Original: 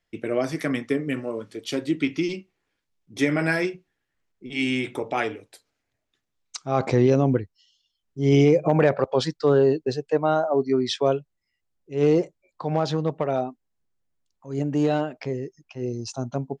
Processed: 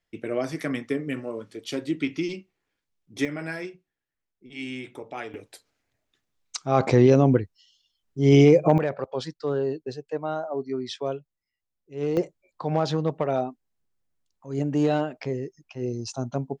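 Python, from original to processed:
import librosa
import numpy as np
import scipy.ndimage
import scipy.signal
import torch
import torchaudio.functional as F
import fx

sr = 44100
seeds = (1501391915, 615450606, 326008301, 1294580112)

y = fx.gain(x, sr, db=fx.steps((0.0, -3.0), (3.25, -10.0), (5.34, 2.0), (8.78, -8.0), (12.17, -0.5)))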